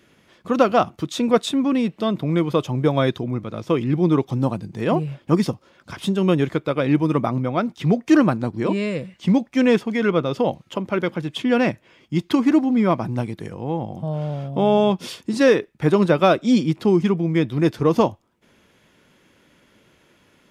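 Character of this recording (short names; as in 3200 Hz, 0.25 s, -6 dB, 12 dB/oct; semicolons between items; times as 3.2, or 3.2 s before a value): noise floor -59 dBFS; spectral tilt -6.0 dB/oct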